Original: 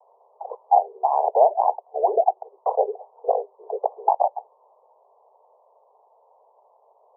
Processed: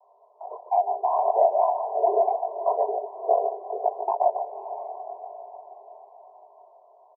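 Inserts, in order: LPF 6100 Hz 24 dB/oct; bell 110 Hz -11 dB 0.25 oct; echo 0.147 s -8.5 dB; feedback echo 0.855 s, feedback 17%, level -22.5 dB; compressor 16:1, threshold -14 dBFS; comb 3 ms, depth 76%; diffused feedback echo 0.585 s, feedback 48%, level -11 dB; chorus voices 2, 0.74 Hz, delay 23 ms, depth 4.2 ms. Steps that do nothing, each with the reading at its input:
LPF 6100 Hz: input band ends at 1100 Hz; bell 110 Hz: input band starts at 340 Hz

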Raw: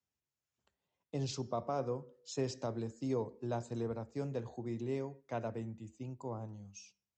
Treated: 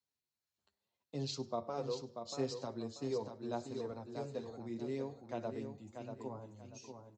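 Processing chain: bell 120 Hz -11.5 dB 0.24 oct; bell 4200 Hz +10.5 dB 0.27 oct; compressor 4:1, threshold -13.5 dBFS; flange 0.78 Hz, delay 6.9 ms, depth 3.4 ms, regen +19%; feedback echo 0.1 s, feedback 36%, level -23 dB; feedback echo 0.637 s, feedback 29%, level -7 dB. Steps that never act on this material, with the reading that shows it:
compressor, threshold -13.5 dBFS: input peak -24.5 dBFS

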